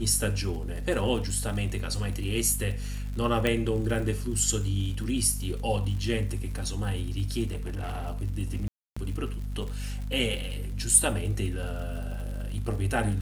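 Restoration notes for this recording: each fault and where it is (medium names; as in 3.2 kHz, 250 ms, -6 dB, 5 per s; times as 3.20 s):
crackle 80 per s -36 dBFS
hum 50 Hz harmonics 5 -33 dBFS
3.47 s: pop -13 dBFS
7.47–8.08 s: clipped -29 dBFS
8.68–8.96 s: dropout 285 ms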